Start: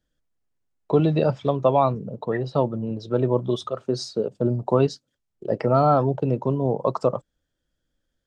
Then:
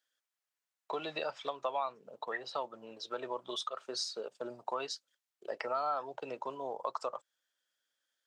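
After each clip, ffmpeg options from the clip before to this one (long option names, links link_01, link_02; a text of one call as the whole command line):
ffmpeg -i in.wav -af "highpass=1100,acompressor=threshold=-36dB:ratio=2.5,volume=1dB" out.wav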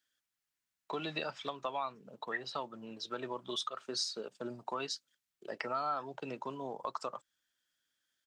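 ffmpeg -i in.wav -af "firequalizer=gain_entry='entry(210,0);entry(510,-13);entry(1600,-7)':delay=0.05:min_phase=1,volume=8.5dB" out.wav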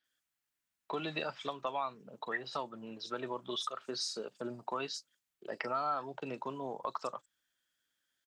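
ffmpeg -i in.wav -filter_complex "[0:a]acrossover=split=5100[link_01][link_02];[link_02]adelay=40[link_03];[link_01][link_03]amix=inputs=2:normalize=0,volume=1dB" out.wav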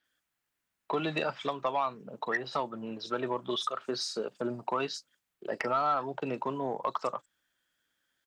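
ffmpeg -i in.wav -filter_complex "[0:a]asplit=2[link_01][link_02];[link_02]adynamicsmooth=sensitivity=2:basefreq=3600,volume=-1dB[link_03];[link_01][link_03]amix=inputs=2:normalize=0,asoftclip=type=tanh:threshold=-20dB,volume=2dB" out.wav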